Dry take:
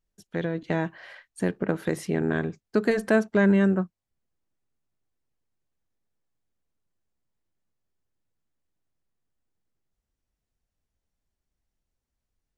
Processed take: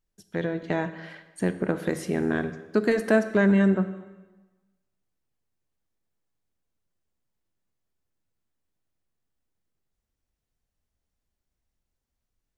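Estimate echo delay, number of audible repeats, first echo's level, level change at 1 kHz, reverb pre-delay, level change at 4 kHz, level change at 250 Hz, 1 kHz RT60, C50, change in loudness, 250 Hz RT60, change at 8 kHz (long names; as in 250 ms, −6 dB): no echo audible, no echo audible, no echo audible, +0.5 dB, 6 ms, +0.5 dB, +0.5 dB, 1.2 s, 12.0 dB, +0.5 dB, 1.2 s, can't be measured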